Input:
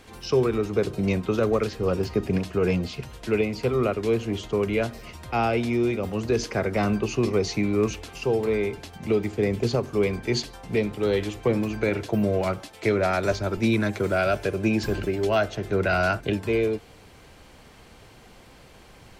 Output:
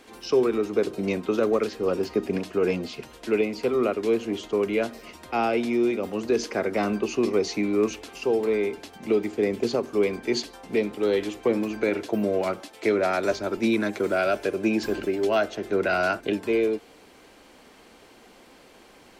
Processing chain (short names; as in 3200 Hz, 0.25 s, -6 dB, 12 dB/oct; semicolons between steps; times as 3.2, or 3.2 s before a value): resonant low shelf 180 Hz -11.5 dB, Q 1.5; gain -1 dB